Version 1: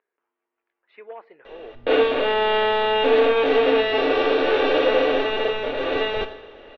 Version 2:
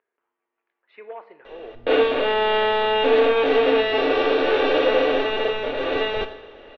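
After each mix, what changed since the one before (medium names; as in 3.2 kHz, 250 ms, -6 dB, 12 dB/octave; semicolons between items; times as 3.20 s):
speech: send on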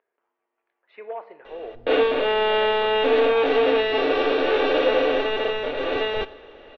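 speech: add peaking EQ 640 Hz +5.5 dB 0.94 oct; background: send -8.0 dB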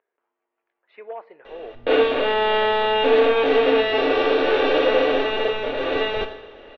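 speech: send -10.0 dB; background: send +10.0 dB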